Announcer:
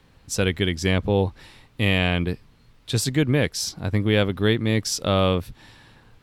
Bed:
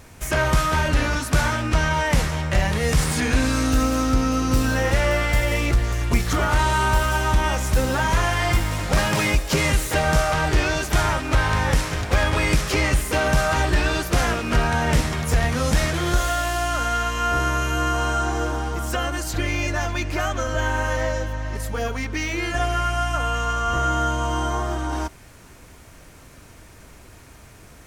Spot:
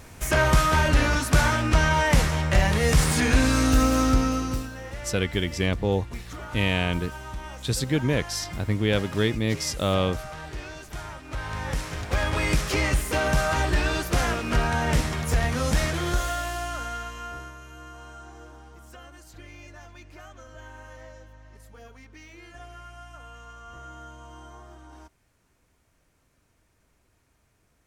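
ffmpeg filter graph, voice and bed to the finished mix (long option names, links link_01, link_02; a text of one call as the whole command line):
ffmpeg -i stem1.wav -i stem2.wav -filter_complex "[0:a]adelay=4750,volume=-3.5dB[link_01];[1:a]volume=13.5dB,afade=type=out:start_time=4.08:duration=0.62:silence=0.141254,afade=type=in:start_time=11.21:duration=1.36:silence=0.211349,afade=type=out:start_time=15.88:duration=1.67:silence=0.125893[link_02];[link_01][link_02]amix=inputs=2:normalize=0" out.wav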